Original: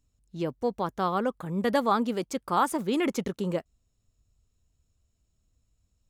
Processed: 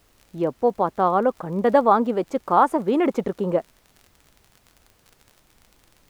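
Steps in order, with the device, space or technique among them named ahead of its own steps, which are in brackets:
drawn EQ curve 130 Hz 0 dB, 720 Hz +10 dB, 5,200 Hz −10 dB
vinyl LP (surface crackle 38 per second −37 dBFS; pink noise bed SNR 37 dB)
level +1 dB

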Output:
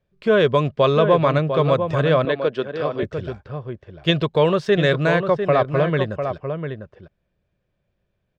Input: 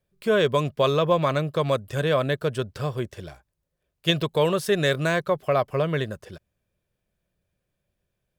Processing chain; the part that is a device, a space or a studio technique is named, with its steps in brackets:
shout across a valley (high-frequency loss of the air 170 metres; slap from a distant wall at 120 metres, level −7 dB)
0:02.25–0:03.03: Chebyshev band-pass filter 280–4,600 Hz, order 2
level +5 dB

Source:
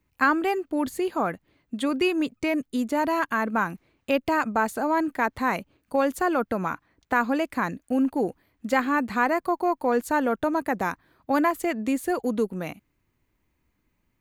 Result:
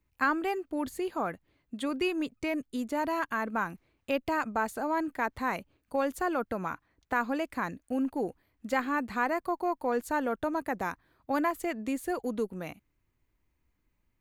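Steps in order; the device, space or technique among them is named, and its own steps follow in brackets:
low shelf boost with a cut just above (low-shelf EQ 71 Hz +7 dB; parametric band 200 Hz −2.5 dB 1.1 octaves)
level −6 dB

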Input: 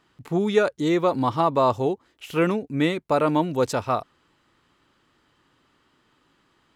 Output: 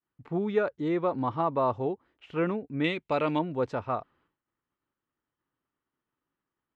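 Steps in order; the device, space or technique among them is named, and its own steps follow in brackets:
hearing-loss simulation (low-pass filter 2,200 Hz 12 dB per octave; downward expander −54 dBFS)
0:02.84–0:03.39: flat-topped bell 4,500 Hz +12.5 dB 2.4 octaves
level −6.5 dB

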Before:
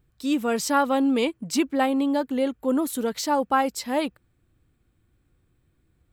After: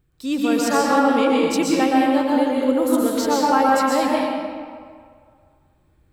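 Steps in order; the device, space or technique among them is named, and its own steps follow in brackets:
stairwell (convolution reverb RT60 2.0 s, pre-delay 112 ms, DRR −5 dB)
0:00.77–0:01.43: high-shelf EQ 7,900 Hz −5.5 dB

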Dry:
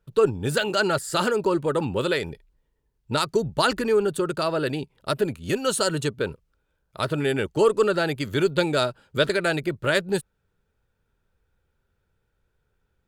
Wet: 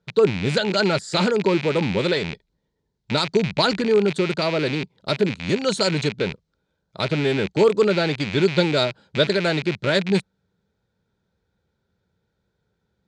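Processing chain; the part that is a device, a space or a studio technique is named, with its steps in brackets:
car door speaker with a rattle (loose part that buzzes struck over −37 dBFS, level −17 dBFS; loudspeaker in its box 86–6,800 Hz, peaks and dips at 190 Hz +8 dB, 1,200 Hz −6 dB, 1,700 Hz −3 dB, 2,700 Hz −8 dB, 4,000 Hz +5 dB)
level +2.5 dB

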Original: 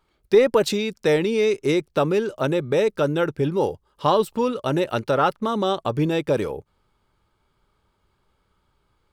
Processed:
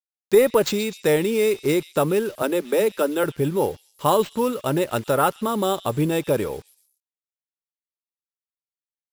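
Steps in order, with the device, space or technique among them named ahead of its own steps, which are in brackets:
0:02.42–0:03.24: Butterworth high-pass 180 Hz 96 dB per octave
early 8-bit sampler (sample-rate reduction 11,000 Hz, jitter 0%; bit reduction 8 bits)
echo through a band-pass that steps 127 ms, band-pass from 3,900 Hz, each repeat 0.7 octaves, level −11 dB

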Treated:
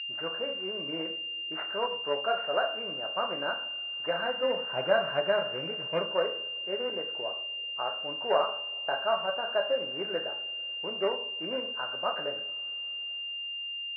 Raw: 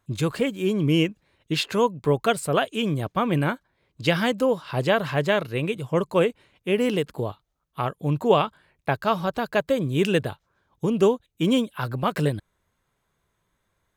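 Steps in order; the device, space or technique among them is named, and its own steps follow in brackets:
0:04.43–0:06.03: bass and treble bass +13 dB, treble +14 dB
coupled-rooms reverb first 0.51 s, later 5 s, from −28 dB, DRR 2.5 dB
toy sound module (linearly interpolated sample-rate reduction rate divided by 4×; switching amplifier with a slow clock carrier 2,800 Hz; loudspeaker in its box 580–4,200 Hz, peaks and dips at 620 Hz +7 dB, 1,500 Hz +10 dB, 3,300 Hz −7 dB)
level −7.5 dB

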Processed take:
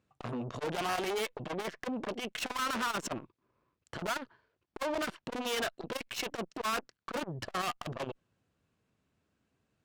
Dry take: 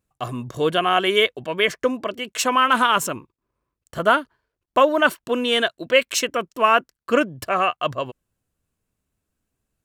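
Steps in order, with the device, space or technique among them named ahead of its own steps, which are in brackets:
valve radio (band-pass filter 98–4,500 Hz; tube saturation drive 33 dB, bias 0.25; saturating transformer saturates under 450 Hz)
level +4 dB

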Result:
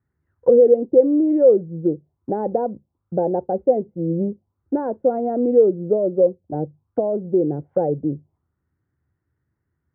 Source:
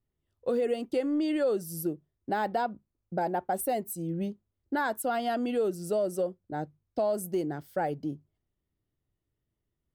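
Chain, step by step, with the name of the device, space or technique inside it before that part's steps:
envelope filter bass rig (envelope-controlled low-pass 510–1,600 Hz down, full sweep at −32.5 dBFS; loudspeaker in its box 73–2,100 Hz, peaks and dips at 80 Hz +9 dB, 140 Hz +4 dB, 430 Hz −3 dB, 630 Hz −7 dB, 1,200 Hz −4 dB, 1,700 Hz −3 dB)
level +7.5 dB

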